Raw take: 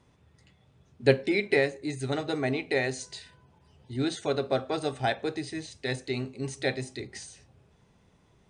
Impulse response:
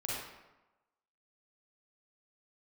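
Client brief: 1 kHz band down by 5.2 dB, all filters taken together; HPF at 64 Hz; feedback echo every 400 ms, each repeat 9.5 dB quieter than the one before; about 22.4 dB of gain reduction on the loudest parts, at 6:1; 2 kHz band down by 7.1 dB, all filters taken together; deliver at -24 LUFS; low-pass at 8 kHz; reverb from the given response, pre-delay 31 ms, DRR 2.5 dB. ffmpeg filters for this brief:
-filter_complex "[0:a]highpass=64,lowpass=8000,equalizer=f=1000:t=o:g=-7,equalizer=f=2000:t=o:g=-6.5,acompressor=threshold=0.00794:ratio=6,aecho=1:1:400|800|1200|1600:0.335|0.111|0.0365|0.012,asplit=2[s0][s1];[1:a]atrim=start_sample=2205,adelay=31[s2];[s1][s2]afir=irnorm=-1:irlink=0,volume=0.501[s3];[s0][s3]amix=inputs=2:normalize=0,volume=9.44"

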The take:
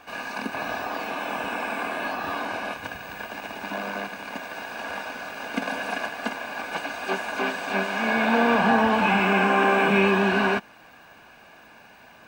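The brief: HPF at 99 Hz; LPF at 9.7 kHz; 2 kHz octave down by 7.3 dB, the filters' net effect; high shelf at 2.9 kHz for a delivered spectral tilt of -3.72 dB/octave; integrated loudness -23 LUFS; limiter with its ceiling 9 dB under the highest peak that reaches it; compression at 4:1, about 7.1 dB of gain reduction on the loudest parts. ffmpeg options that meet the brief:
-af "highpass=99,lowpass=9700,equalizer=f=2000:t=o:g=-7,highshelf=f=2900:g=-9,acompressor=threshold=0.0501:ratio=4,volume=3.76,alimiter=limit=0.251:level=0:latency=1"

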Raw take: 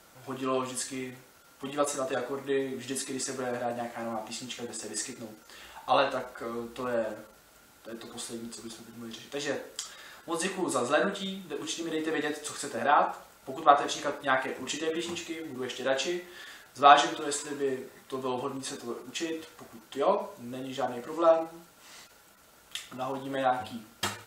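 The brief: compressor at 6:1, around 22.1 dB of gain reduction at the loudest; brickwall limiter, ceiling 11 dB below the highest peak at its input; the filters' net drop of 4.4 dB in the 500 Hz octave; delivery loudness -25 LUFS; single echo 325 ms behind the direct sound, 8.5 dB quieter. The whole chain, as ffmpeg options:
-af "equalizer=f=500:t=o:g=-6,acompressor=threshold=0.01:ratio=6,alimiter=level_in=2.99:limit=0.0631:level=0:latency=1,volume=0.335,aecho=1:1:325:0.376,volume=9.44"

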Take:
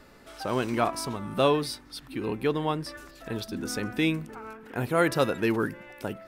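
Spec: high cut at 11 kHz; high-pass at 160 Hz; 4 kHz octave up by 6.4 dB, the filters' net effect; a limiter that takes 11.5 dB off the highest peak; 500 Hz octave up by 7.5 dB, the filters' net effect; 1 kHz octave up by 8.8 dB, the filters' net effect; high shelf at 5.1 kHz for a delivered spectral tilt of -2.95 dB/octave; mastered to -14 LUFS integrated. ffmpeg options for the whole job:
-af "highpass=160,lowpass=11000,equalizer=f=500:t=o:g=6.5,equalizer=f=1000:t=o:g=9,equalizer=f=4000:t=o:g=9,highshelf=f=5100:g=-3.5,volume=4.47,alimiter=limit=1:level=0:latency=1"

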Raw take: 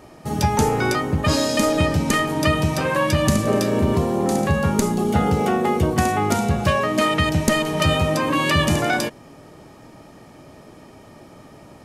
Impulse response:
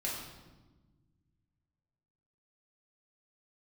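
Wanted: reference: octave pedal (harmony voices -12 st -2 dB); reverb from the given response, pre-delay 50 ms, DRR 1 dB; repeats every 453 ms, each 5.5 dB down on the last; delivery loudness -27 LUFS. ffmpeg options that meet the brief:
-filter_complex "[0:a]aecho=1:1:453|906|1359|1812|2265|2718|3171:0.531|0.281|0.149|0.079|0.0419|0.0222|0.0118,asplit=2[s0][s1];[1:a]atrim=start_sample=2205,adelay=50[s2];[s1][s2]afir=irnorm=-1:irlink=0,volume=0.596[s3];[s0][s3]amix=inputs=2:normalize=0,asplit=2[s4][s5];[s5]asetrate=22050,aresample=44100,atempo=2,volume=0.794[s6];[s4][s6]amix=inputs=2:normalize=0,volume=0.224"

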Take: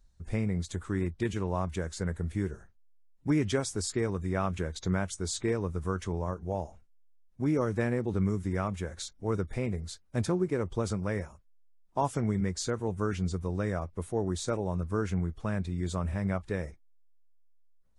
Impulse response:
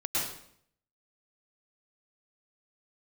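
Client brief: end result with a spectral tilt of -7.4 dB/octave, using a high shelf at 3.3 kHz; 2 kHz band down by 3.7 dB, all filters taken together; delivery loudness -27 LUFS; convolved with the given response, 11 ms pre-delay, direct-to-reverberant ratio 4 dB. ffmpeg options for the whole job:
-filter_complex "[0:a]equalizer=f=2000:t=o:g=-3.5,highshelf=f=3300:g=-4.5,asplit=2[s0][s1];[1:a]atrim=start_sample=2205,adelay=11[s2];[s1][s2]afir=irnorm=-1:irlink=0,volume=0.266[s3];[s0][s3]amix=inputs=2:normalize=0,volume=1.5"

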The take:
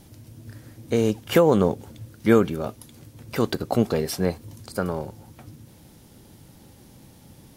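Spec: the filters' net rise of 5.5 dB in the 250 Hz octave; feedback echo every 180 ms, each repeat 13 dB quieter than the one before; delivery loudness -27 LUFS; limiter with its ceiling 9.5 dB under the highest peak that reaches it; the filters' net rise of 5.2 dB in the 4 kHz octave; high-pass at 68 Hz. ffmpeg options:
-af "highpass=68,equalizer=f=250:t=o:g=7,equalizer=f=4000:t=o:g=7,alimiter=limit=0.316:level=0:latency=1,aecho=1:1:180|360|540:0.224|0.0493|0.0108,volume=0.708"

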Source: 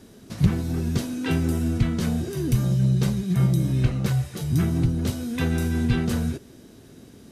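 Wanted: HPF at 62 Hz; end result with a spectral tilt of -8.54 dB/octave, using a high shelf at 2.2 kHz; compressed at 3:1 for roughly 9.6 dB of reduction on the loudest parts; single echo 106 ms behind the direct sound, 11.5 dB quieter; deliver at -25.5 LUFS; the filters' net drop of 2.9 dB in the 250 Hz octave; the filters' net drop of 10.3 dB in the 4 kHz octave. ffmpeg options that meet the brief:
-af "highpass=62,equalizer=f=250:t=o:g=-4,highshelf=f=2200:g=-5,equalizer=f=4000:t=o:g=-8.5,acompressor=threshold=0.0316:ratio=3,aecho=1:1:106:0.266,volume=2.24"

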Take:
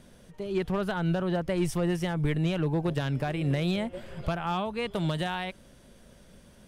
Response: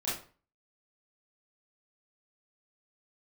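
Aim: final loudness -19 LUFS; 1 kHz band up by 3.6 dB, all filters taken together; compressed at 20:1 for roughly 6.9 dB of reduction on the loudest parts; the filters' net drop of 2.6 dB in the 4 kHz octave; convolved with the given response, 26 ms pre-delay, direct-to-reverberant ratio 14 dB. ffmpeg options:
-filter_complex "[0:a]equalizer=f=1000:t=o:g=5,equalizer=f=4000:t=o:g=-4,acompressor=threshold=0.0355:ratio=20,asplit=2[s0][s1];[1:a]atrim=start_sample=2205,adelay=26[s2];[s1][s2]afir=irnorm=-1:irlink=0,volume=0.106[s3];[s0][s3]amix=inputs=2:normalize=0,volume=5.96"

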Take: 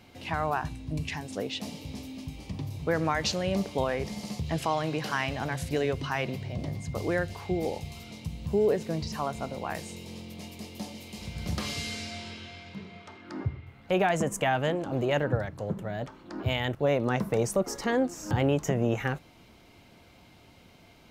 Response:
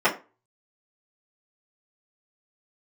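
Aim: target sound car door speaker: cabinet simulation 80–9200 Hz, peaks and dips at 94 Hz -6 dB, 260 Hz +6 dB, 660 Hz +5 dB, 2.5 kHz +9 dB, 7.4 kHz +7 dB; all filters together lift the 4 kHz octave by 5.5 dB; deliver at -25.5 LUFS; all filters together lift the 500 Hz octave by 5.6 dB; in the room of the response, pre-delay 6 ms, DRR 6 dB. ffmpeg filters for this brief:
-filter_complex "[0:a]equalizer=f=500:t=o:g=4.5,equalizer=f=4000:t=o:g=4.5,asplit=2[s0][s1];[1:a]atrim=start_sample=2205,adelay=6[s2];[s1][s2]afir=irnorm=-1:irlink=0,volume=0.0631[s3];[s0][s3]amix=inputs=2:normalize=0,highpass=80,equalizer=f=94:t=q:w=4:g=-6,equalizer=f=260:t=q:w=4:g=6,equalizer=f=660:t=q:w=4:g=5,equalizer=f=2500:t=q:w=4:g=9,equalizer=f=7400:t=q:w=4:g=7,lowpass=f=9200:w=0.5412,lowpass=f=9200:w=1.3066,volume=0.944"

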